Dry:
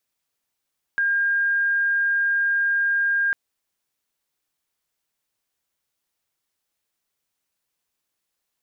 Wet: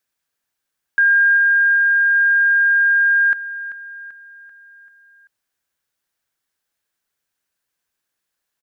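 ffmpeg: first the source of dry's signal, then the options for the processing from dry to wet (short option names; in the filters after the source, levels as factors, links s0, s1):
-f lavfi -i "aevalsrc='0.126*sin(2*PI*1610*t)':d=2.35:s=44100"
-af "equalizer=f=1600:w=4.3:g=8,aecho=1:1:388|776|1164|1552|1940:0.211|0.106|0.0528|0.0264|0.0132"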